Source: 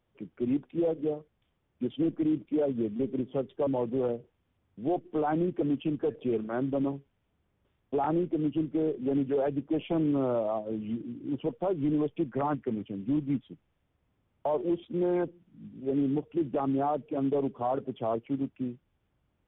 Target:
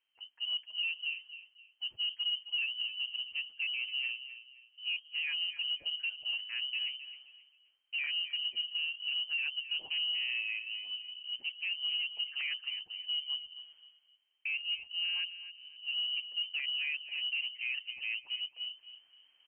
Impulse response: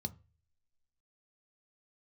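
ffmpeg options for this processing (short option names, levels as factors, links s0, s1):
-filter_complex "[0:a]areverse,acompressor=mode=upward:threshold=0.00447:ratio=2.5,areverse,asplit=2[s0][s1];[s1]adelay=263,lowpass=f=1900:p=1,volume=0.251,asplit=2[s2][s3];[s3]adelay=263,lowpass=f=1900:p=1,volume=0.32,asplit=2[s4][s5];[s5]adelay=263,lowpass=f=1900:p=1,volume=0.32[s6];[s0][s2][s4][s6]amix=inputs=4:normalize=0,lowpass=f=2700:t=q:w=0.5098,lowpass=f=2700:t=q:w=0.6013,lowpass=f=2700:t=q:w=0.9,lowpass=f=2700:t=q:w=2.563,afreqshift=-3200,volume=0.422"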